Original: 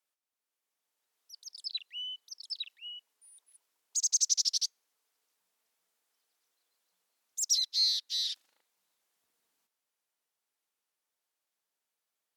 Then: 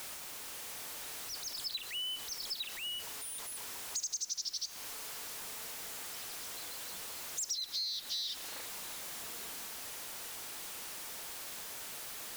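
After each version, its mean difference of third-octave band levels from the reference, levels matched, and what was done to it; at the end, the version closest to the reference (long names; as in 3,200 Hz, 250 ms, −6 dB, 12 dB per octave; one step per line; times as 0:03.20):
17.0 dB: converter with a step at zero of −37.5 dBFS
in parallel at −11.5 dB: bit-depth reduction 6 bits, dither triangular
on the sum: downward compressor 6 to 1, threshold −32 dBFS, peak gain reduction 11.5 dB
level −3 dB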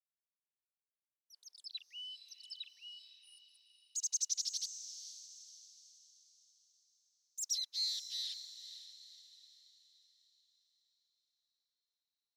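1.5 dB: downward expander −56 dBFS
parametric band 4,800 Hz −4.5 dB 0.25 octaves
feedback delay with all-pass diffusion 491 ms, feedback 45%, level −11 dB
level −7.5 dB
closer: second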